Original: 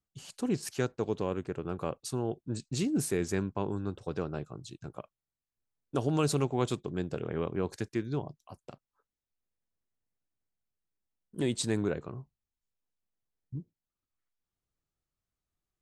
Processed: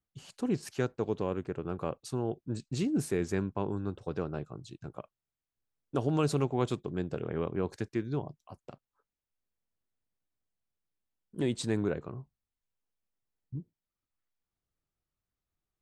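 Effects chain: high shelf 4300 Hz -8 dB

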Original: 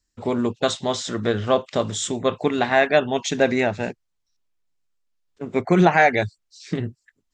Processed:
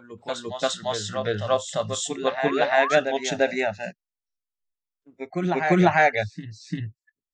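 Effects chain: spectral noise reduction 19 dB; painted sound rise, 2.51–3, 340–1700 Hz -25 dBFS; reverse echo 0.346 s -7 dB; gain -2.5 dB

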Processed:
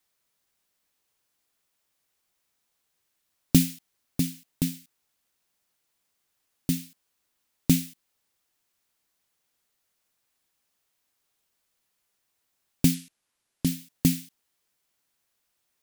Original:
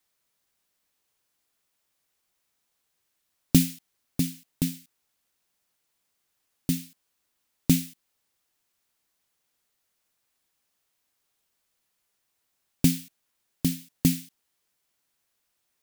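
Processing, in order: 12.94–13.67 Chebyshev low-pass 11000 Hz, order 3

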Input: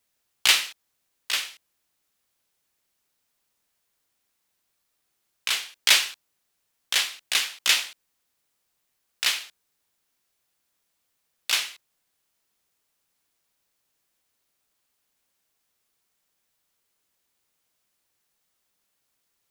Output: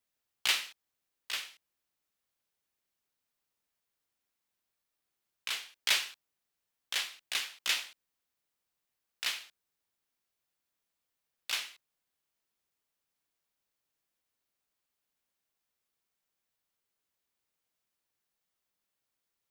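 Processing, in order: bell 8800 Hz -3 dB 1.8 oct; gain -9 dB

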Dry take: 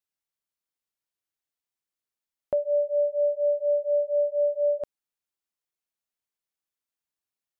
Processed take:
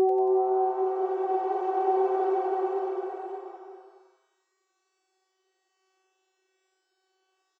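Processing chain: vocoder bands 32, saw 378 Hz; Paulstretch 4.1×, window 1.00 s, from 4.35; on a send: frequency-shifting echo 92 ms, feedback 62%, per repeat +140 Hz, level -17 dB

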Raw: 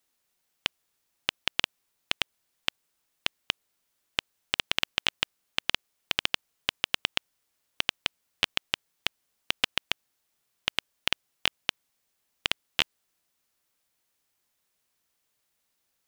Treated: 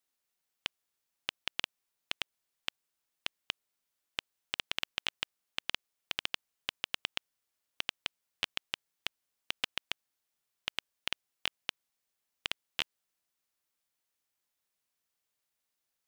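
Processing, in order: low shelf 430 Hz -3 dB; gain -8 dB

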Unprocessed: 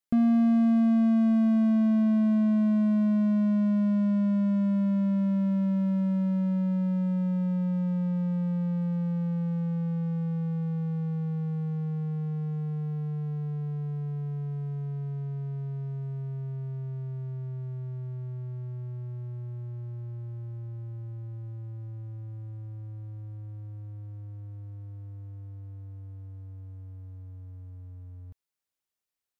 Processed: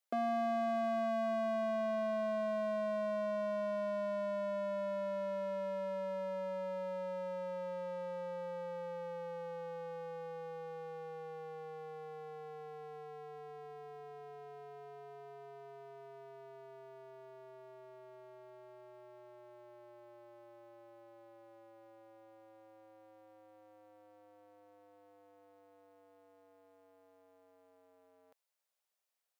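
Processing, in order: ladder high-pass 470 Hz, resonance 40%; gain +8.5 dB

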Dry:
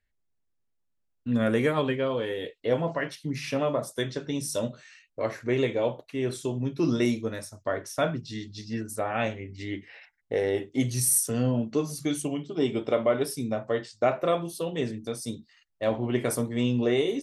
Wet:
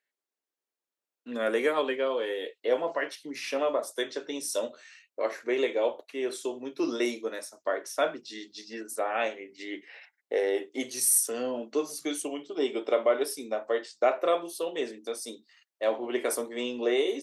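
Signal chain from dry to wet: HPF 330 Hz 24 dB/oct

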